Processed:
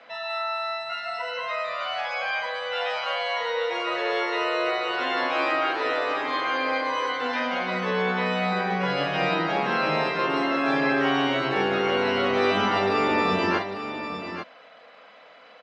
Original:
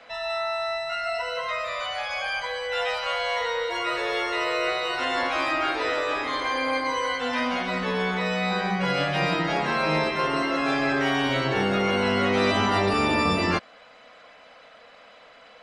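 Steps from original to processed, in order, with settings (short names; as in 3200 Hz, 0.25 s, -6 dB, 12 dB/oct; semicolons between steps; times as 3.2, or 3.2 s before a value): Bessel high-pass 200 Hz, order 2; air absorption 120 m; tapped delay 43/845 ms -7.5/-8.5 dB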